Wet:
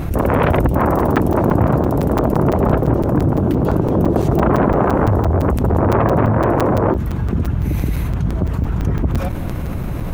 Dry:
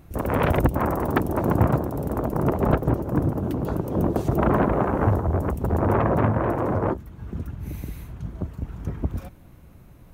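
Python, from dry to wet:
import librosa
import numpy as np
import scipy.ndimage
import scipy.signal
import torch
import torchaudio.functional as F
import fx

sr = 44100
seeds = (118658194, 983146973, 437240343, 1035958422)

y = fx.high_shelf(x, sr, hz=3700.0, db=-7.0)
y = fx.buffer_crackle(y, sr, first_s=0.99, period_s=0.17, block=256, kind='zero')
y = fx.env_flatten(y, sr, amount_pct=70)
y = F.gain(torch.from_numpy(y), 2.5).numpy()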